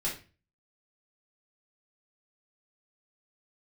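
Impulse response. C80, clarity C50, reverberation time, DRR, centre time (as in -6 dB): 13.5 dB, 7.5 dB, 0.35 s, -6.0 dB, 27 ms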